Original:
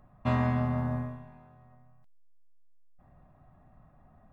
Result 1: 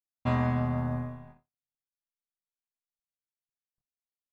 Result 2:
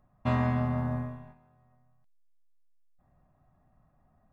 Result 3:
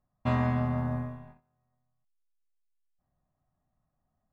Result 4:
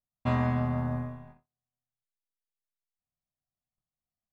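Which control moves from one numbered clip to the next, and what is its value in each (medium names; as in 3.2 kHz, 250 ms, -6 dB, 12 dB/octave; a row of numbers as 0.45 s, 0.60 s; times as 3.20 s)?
gate, range: -60 dB, -8 dB, -21 dB, -40 dB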